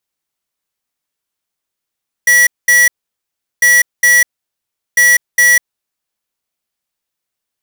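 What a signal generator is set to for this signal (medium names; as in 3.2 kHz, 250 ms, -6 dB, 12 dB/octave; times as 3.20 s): beep pattern square 1.94 kHz, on 0.20 s, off 0.21 s, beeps 2, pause 0.74 s, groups 3, -8 dBFS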